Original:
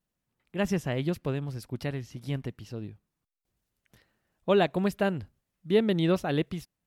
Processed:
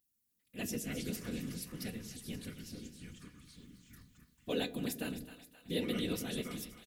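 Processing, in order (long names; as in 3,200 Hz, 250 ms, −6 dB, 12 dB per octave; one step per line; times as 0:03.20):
guitar amp tone stack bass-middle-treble 10-0-1
notch filter 3,100 Hz, Q 25
random phases in short frames
flanger 0.47 Hz, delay 8 ms, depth 6.4 ms, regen +75%
delay with pitch and tempo change per echo 138 ms, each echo −4 semitones, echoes 2, each echo −6 dB
RIAA equalisation recording
comb filter 4.1 ms, depth 34%
echo with a time of its own for lows and highs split 650 Hz, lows 102 ms, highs 263 ms, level −12 dB
level +17 dB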